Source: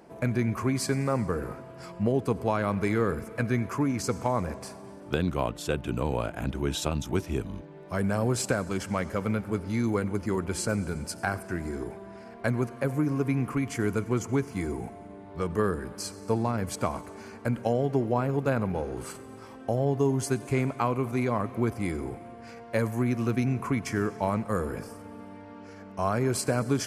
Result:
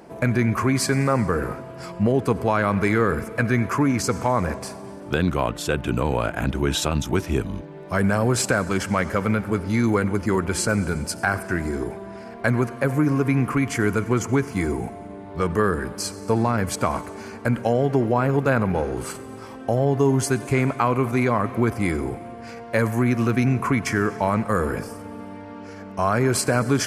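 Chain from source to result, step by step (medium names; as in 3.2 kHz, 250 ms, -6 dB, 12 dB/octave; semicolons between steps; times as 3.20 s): dynamic bell 1.6 kHz, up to +5 dB, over -43 dBFS, Q 1.1; in parallel at +2.5 dB: peak limiter -19 dBFS, peak gain reduction 10 dB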